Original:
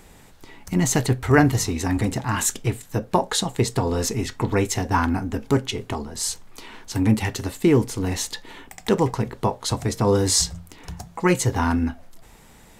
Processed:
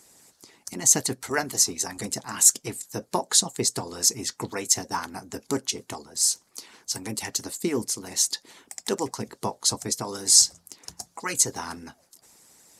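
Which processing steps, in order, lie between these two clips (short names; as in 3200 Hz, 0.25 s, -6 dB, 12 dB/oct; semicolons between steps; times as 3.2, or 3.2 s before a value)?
HPF 150 Hz 12 dB/oct; harmonic-percussive split harmonic -16 dB; band shelf 7300 Hz +13 dB; gain -5.5 dB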